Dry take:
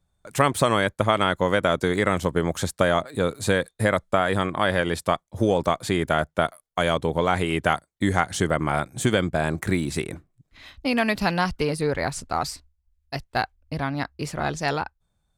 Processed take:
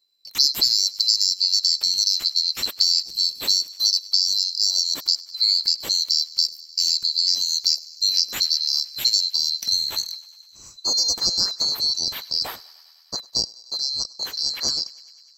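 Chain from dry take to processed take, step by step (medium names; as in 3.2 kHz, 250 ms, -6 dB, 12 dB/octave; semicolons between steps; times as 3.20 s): split-band scrambler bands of 4 kHz; thinning echo 101 ms, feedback 76%, high-pass 570 Hz, level -21.5 dB; trim +1 dB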